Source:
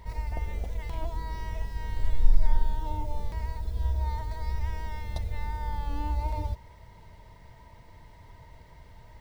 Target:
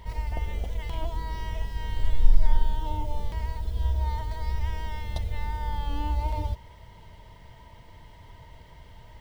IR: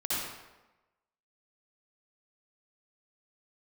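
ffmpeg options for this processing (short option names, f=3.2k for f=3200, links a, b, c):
-af "equalizer=f=3.1k:t=o:w=0.21:g=10.5,volume=2dB"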